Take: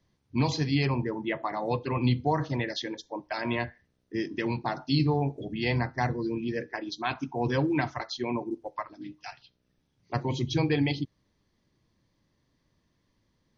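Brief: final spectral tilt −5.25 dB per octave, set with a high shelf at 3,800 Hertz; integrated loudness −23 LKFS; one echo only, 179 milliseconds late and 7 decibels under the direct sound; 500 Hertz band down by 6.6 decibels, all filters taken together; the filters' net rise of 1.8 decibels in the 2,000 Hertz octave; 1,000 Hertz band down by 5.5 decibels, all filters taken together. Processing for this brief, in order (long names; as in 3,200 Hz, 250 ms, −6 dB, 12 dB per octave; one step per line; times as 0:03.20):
parametric band 500 Hz −8 dB
parametric band 1,000 Hz −4.5 dB
parametric band 2,000 Hz +5.5 dB
high-shelf EQ 3,800 Hz −7.5 dB
single-tap delay 179 ms −7 dB
level +8 dB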